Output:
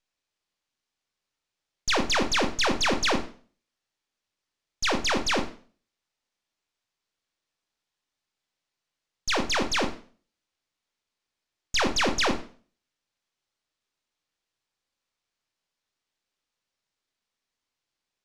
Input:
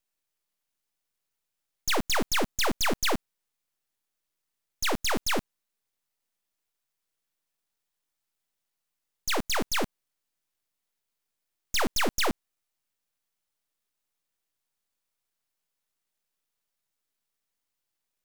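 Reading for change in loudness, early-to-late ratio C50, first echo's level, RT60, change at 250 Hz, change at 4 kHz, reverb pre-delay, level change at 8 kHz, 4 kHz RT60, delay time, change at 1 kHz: +2.5 dB, 11.0 dB, no echo audible, 0.45 s, +3.0 dB, +3.5 dB, 19 ms, 0.0 dB, 0.40 s, no echo audible, +3.0 dB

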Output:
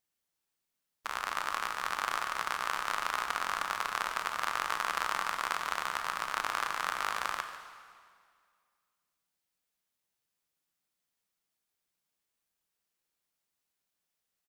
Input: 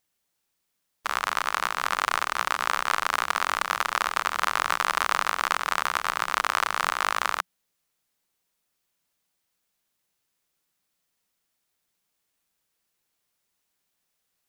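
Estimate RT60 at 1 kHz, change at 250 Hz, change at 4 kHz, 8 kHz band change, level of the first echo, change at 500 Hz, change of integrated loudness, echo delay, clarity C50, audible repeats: 2.0 s, −7.5 dB, −7.5 dB, −7.5 dB, −13.5 dB, −7.5 dB, −7.5 dB, 146 ms, 7.0 dB, 1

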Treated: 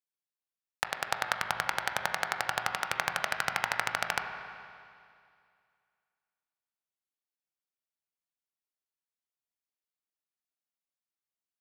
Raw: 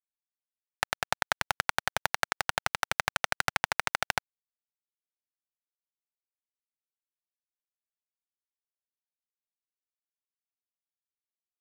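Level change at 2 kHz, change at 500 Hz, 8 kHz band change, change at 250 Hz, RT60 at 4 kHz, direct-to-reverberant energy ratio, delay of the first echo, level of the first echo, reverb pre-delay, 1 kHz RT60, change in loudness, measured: −1.5 dB, −1.5 dB, −2.5 dB, −2.0 dB, 2.3 s, 4.5 dB, no echo audible, no echo audible, 17 ms, 2.3 s, −1.5 dB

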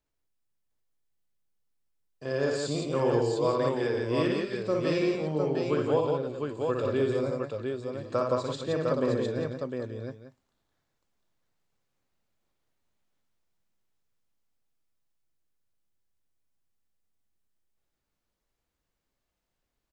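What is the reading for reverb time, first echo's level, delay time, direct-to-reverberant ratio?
no reverb audible, −3.5 dB, 59 ms, no reverb audible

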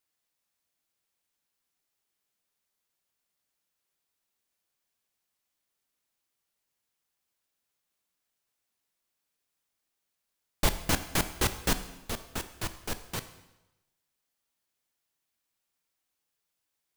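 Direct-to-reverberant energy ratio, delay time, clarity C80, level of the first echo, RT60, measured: 10.0 dB, no echo audible, 14.0 dB, no echo audible, 1.0 s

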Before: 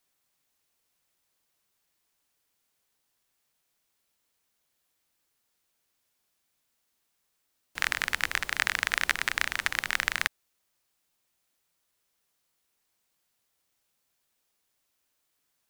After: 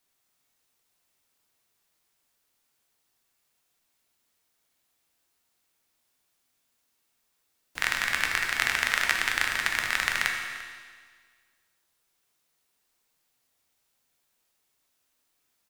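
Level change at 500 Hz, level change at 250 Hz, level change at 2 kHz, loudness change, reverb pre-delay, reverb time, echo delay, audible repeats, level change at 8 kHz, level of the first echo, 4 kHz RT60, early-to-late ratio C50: +2.5 dB, +3.0 dB, +2.5 dB, +2.0 dB, 9 ms, 1.7 s, 345 ms, 1, +2.5 dB, −18.0 dB, 1.7 s, 3.5 dB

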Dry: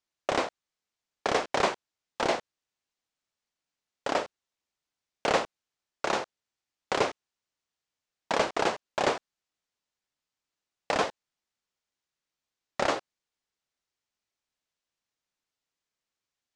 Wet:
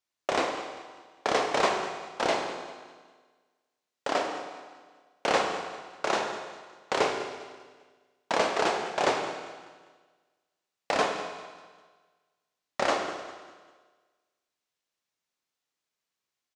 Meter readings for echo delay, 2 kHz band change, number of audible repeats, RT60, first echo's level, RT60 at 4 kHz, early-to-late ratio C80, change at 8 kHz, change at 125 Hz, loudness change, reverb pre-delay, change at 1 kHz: 199 ms, +1.5 dB, 3, 1.5 s, −16.0 dB, 1.5 s, 6.0 dB, +1.5 dB, −2.0 dB, +0.5 dB, 17 ms, +2.0 dB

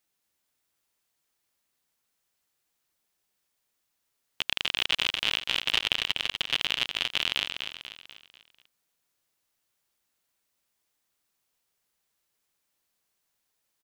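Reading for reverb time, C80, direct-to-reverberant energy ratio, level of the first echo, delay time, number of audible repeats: no reverb audible, no reverb audible, no reverb audible, −7.0 dB, 245 ms, 5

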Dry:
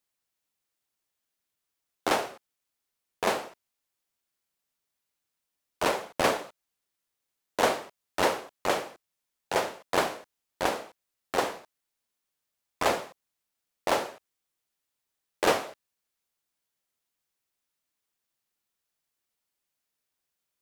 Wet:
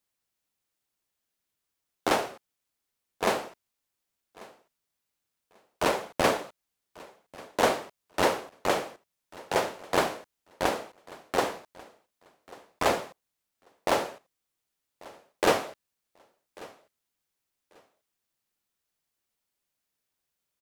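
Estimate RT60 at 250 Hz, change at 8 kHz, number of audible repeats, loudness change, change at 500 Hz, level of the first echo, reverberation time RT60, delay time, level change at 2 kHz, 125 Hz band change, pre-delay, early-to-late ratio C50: no reverb audible, 0.0 dB, 1, +0.5 dB, +1.0 dB, −22.0 dB, no reverb audible, 1,141 ms, 0.0 dB, +3.0 dB, no reverb audible, no reverb audible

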